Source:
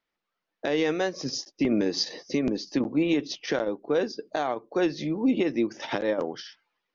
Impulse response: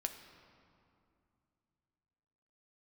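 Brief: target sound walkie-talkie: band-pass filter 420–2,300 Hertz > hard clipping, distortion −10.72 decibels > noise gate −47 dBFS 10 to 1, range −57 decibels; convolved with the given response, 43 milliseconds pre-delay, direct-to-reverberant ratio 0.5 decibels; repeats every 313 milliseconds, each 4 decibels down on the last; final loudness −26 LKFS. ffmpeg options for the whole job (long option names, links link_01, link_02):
-filter_complex "[0:a]aecho=1:1:313|626|939|1252|1565|1878|2191|2504|2817:0.631|0.398|0.25|0.158|0.0994|0.0626|0.0394|0.0249|0.0157,asplit=2[link_01][link_02];[1:a]atrim=start_sample=2205,adelay=43[link_03];[link_02][link_03]afir=irnorm=-1:irlink=0,volume=0dB[link_04];[link_01][link_04]amix=inputs=2:normalize=0,highpass=420,lowpass=2300,asoftclip=type=hard:threshold=-24.5dB,agate=range=-57dB:threshold=-47dB:ratio=10,volume=3.5dB"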